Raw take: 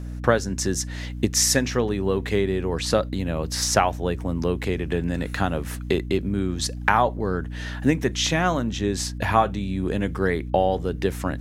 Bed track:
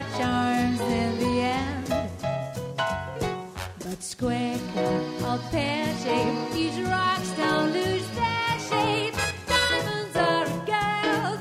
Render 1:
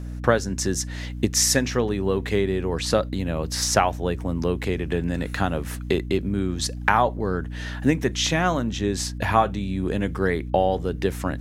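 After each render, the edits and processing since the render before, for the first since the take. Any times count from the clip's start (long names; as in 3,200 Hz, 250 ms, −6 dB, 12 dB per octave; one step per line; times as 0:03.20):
no processing that can be heard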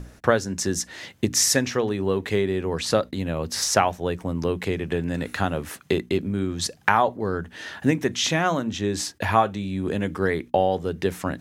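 mains-hum notches 60/120/180/240/300 Hz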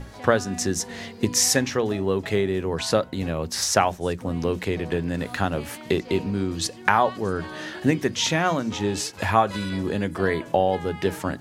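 mix in bed track −14 dB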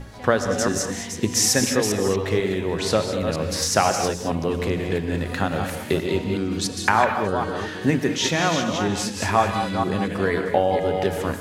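delay that plays each chunk backwards 240 ms, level −6 dB
reverb whose tail is shaped and stops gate 240 ms rising, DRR 6.5 dB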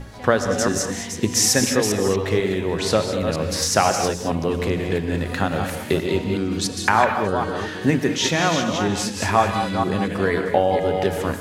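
level +1.5 dB
brickwall limiter −2 dBFS, peak gain reduction 1 dB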